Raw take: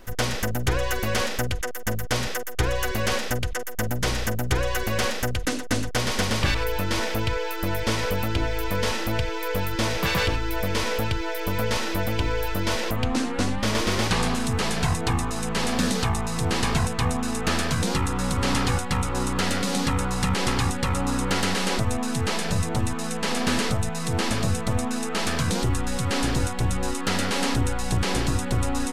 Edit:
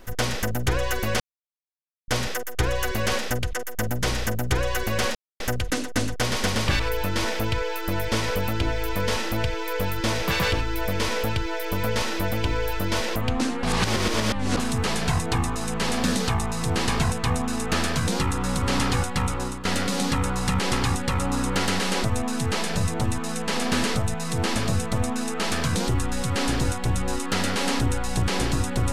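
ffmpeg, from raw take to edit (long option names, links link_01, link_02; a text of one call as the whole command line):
ffmpeg -i in.wav -filter_complex "[0:a]asplit=7[link_01][link_02][link_03][link_04][link_05][link_06][link_07];[link_01]atrim=end=1.2,asetpts=PTS-STARTPTS,afade=type=out:start_time=1.196:duration=0.004:curve=hsin[link_08];[link_02]atrim=start=1.2:end=2.08,asetpts=PTS-STARTPTS,volume=0[link_09];[link_03]atrim=start=2.08:end=5.15,asetpts=PTS-STARTPTS,afade=type=in:duration=0.004:curve=hsin,afade=type=out:start_time=3.066:duration=0.004:curve=hsin,apad=pad_dur=0.25[link_10];[link_04]atrim=start=5.15:end=13.382,asetpts=PTS-STARTPTS,afade=type=in:duration=0.004:curve=hsin[link_11];[link_05]atrim=start=13.378:end=14.322,asetpts=PTS-STARTPTS,areverse[link_12];[link_06]atrim=start=14.318:end=19.4,asetpts=PTS-STARTPTS,afade=type=out:start_time=4.752:duration=0.33:silence=0.211349[link_13];[link_07]atrim=start=19.4,asetpts=PTS-STARTPTS,afade=type=in:duration=0.004:curve=hsin:silence=0.211349[link_14];[link_08][link_09][link_10][link_11]concat=n=4:v=0:a=1[link_15];[link_15][link_12]acrossfade=duration=0.004:curve1=hsin:curve2=hsin[link_16];[link_13][link_14]concat=n=2:v=0:a=1[link_17];[link_16][link_17]acrossfade=duration=0.004:curve1=hsin:curve2=hsin" out.wav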